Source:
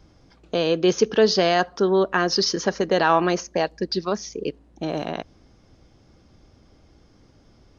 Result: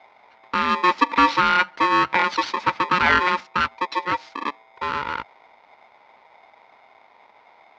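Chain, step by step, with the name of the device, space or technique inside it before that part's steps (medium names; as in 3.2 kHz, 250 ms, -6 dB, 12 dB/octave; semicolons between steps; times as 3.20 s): low-pass 5.5 kHz; ring modulator pedal into a guitar cabinet (polarity switched at an audio rate 720 Hz; cabinet simulation 89–4300 Hz, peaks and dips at 100 Hz -8 dB, 160 Hz -7 dB, 380 Hz -3 dB, 920 Hz +10 dB, 1.4 kHz +6 dB, 2.1 kHz +8 dB); trim -3 dB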